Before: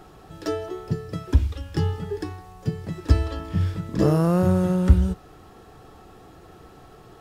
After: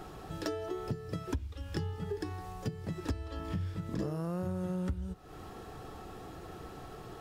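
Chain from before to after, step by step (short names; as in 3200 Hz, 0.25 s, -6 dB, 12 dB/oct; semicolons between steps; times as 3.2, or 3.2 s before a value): compressor 8:1, threshold -34 dBFS, peak gain reduction 24 dB; gain +1 dB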